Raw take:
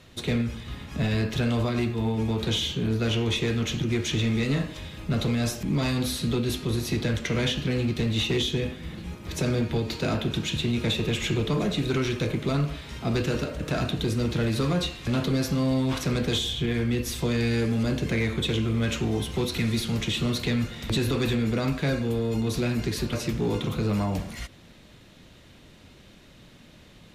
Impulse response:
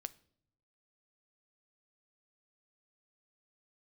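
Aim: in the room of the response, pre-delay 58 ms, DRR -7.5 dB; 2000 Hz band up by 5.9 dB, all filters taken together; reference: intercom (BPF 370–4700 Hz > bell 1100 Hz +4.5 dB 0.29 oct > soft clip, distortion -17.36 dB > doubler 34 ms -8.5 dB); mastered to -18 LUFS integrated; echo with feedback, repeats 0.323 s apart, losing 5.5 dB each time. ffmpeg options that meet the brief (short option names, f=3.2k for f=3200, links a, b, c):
-filter_complex "[0:a]equalizer=f=2k:t=o:g=7.5,aecho=1:1:323|646|969|1292|1615|1938|2261:0.531|0.281|0.149|0.079|0.0419|0.0222|0.0118,asplit=2[a][b];[1:a]atrim=start_sample=2205,adelay=58[c];[b][c]afir=irnorm=-1:irlink=0,volume=11dB[d];[a][d]amix=inputs=2:normalize=0,highpass=370,lowpass=4.7k,equalizer=f=1.1k:t=o:w=0.29:g=4.5,asoftclip=threshold=-13dB,asplit=2[e][f];[f]adelay=34,volume=-8.5dB[g];[e][g]amix=inputs=2:normalize=0,volume=2dB"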